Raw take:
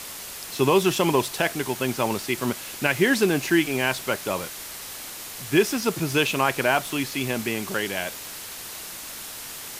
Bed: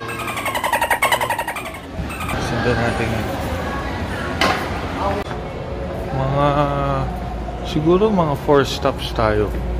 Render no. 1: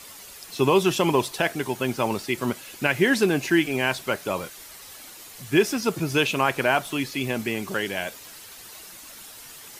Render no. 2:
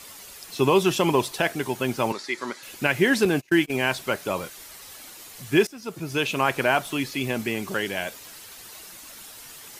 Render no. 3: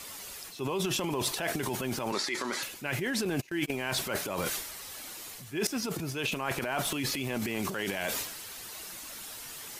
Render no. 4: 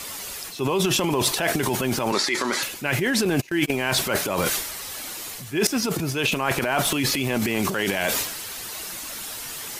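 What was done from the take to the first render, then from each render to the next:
denoiser 9 dB, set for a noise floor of -38 dBFS
2.12–2.63 speaker cabinet 400–9200 Hz, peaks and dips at 460 Hz -4 dB, 690 Hz -8 dB, 1900 Hz +5 dB, 2800 Hz -9 dB, 4200 Hz +4 dB, 8600 Hz -8 dB; 3.25–3.7 gate -28 dBFS, range -31 dB; 5.67–6.48 fade in, from -21 dB
transient shaper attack -4 dB, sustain +11 dB; reverse; compressor 6:1, threshold -29 dBFS, peak gain reduction 13.5 dB; reverse
gain +9 dB

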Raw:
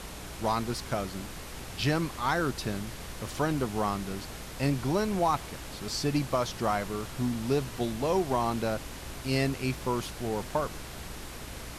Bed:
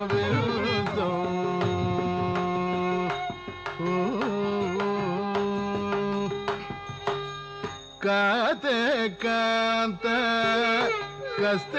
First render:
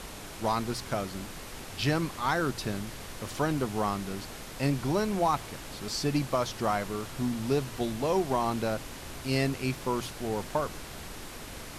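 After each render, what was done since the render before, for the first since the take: de-hum 60 Hz, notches 3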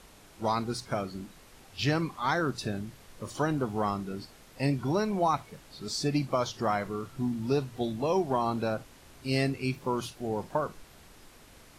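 noise print and reduce 12 dB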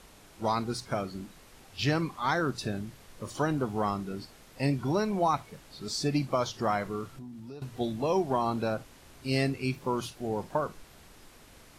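7.12–7.62 compressor 4:1, threshold -43 dBFS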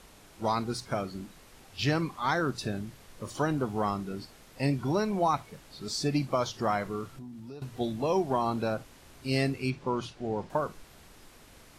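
9.7–10.5 air absorption 81 m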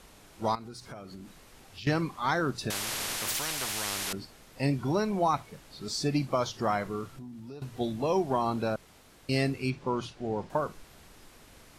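0.55–1.87 compressor 5:1, threshold -41 dBFS; 2.7–4.13 spectral compressor 10:1; 8.76–9.29 room tone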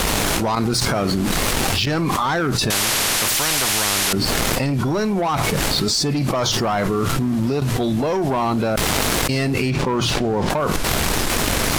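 sample leveller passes 2; fast leveller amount 100%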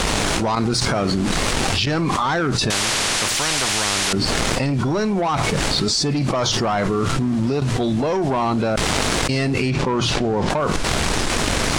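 polynomial smoothing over 9 samples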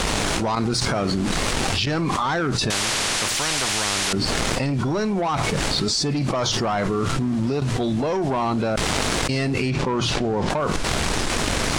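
gain -2.5 dB

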